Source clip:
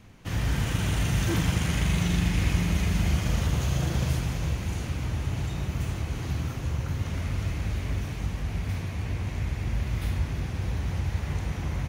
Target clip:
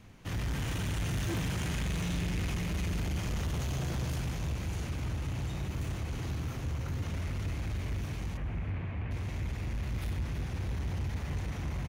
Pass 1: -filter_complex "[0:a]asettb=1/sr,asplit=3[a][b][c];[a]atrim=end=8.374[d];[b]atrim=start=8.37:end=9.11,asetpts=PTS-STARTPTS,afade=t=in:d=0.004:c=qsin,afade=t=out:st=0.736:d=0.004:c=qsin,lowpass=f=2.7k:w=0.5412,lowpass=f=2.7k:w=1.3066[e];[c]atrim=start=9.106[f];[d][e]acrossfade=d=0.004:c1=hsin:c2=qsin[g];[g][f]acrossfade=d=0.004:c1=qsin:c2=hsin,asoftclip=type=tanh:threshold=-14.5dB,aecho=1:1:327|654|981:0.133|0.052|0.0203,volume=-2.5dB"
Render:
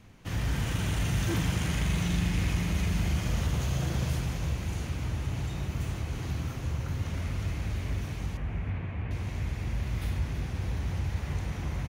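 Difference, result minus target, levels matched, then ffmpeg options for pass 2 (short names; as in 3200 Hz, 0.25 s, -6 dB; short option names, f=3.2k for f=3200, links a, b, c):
soft clip: distortion -14 dB
-filter_complex "[0:a]asettb=1/sr,asplit=3[a][b][c];[a]atrim=end=8.374[d];[b]atrim=start=8.37:end=9.11,asetpts=PTS-STARTPTS,afade=t=in:d=0.004:c=qsin,afade=t=out:st=0.736:d=0.004:c=qsin,lowpass=f=2.7k:w=0.5412,lowpass=f=2.7k:w=1.3066[e];[c]atrim=start=9.106[f];[d][e]acrossfade=d=0.004:c1=hsin:c2=qsin[g];[g][f]acrossfade=d=0.004:c1=qsin:c2=hsin,asoftclip=type=tanh:threshold=-26.5dB,aecho=1:1:327|654|981:0.133|0.052|0.0203,volume=-2.5dB"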